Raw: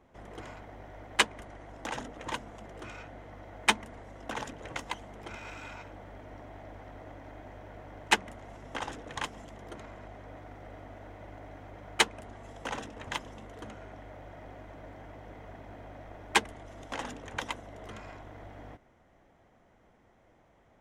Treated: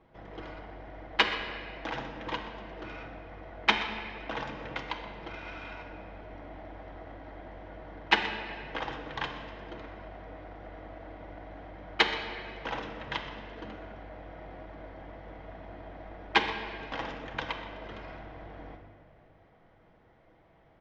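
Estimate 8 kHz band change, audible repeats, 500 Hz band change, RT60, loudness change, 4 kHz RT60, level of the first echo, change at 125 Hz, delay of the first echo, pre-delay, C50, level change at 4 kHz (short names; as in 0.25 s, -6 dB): -16.0 dB, 1, +2.5 dB, 2.4 s, +0.5 dB, 1.6 s, -15.0 dB, +0.5 dB, 0.125 s, 6 ms, 5.5 dB, +1.5 dB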